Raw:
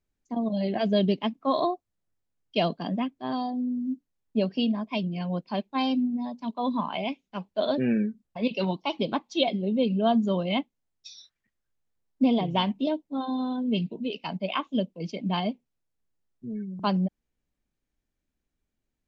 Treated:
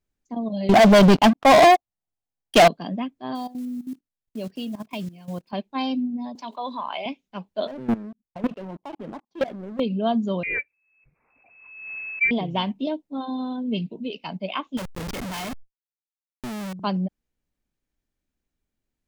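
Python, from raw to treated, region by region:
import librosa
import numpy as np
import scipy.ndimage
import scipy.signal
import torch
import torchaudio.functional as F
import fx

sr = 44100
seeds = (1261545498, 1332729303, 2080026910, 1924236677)

y = fx.chain(x, sr, fx.peak_eq(hz=770.0, db=10.0, octaves=0.48),
    fx.leveller(passes=5), at=(0.69, 2.68))
y = fx.chain(y, sr, fx.block_float(bits=5),
    fx.level_steps(step_db=15), at=(3.35, 5.53))
y = fx.chain(y, sr, fx.highpass(hz=530.0, slope=12),
    fx.env_flatten(amount_pct=50), at=(6.35, 7.06))
y = fx.chain(y, sr, fx.lowpass(hz=1200.0, slope=12),
    fx.level_steps(step_db=23),
    fx.leveller(passes=3), at=(7.67, 9.8))
y = fx.chain(y, sr, fx.notch(hz=770.0, q=11.0),
    fx.freq_invert(carrier_hz=2600),
    fx.pre_swell(db_per_s=52.0), at=(10.43, 12.31))
y = fx.chain(y, sr, fx.peak_eq(hz=1800.0, db=12.5, octaves=1.4),
    fx.schmitt(flips_db=-40.0),
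    fx.sustainer(db_per_s=88.0), at=(14.77, 16.73))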